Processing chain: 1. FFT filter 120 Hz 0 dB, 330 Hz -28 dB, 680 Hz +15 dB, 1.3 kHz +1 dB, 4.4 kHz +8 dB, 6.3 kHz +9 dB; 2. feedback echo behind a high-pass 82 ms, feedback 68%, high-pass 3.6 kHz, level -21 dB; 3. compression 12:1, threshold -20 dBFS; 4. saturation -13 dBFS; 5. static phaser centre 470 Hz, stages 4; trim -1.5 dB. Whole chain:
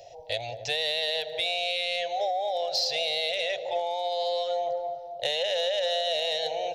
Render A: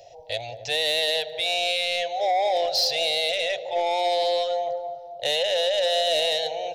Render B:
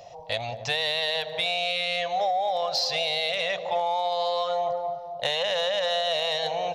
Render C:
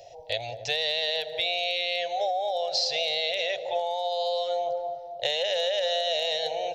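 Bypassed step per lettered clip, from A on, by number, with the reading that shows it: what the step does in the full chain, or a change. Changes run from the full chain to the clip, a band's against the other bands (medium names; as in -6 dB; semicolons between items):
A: 3, mean gain reduction 4.5 dB; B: 5, crest factor change -2.5 dB; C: 4, distortion -25 dB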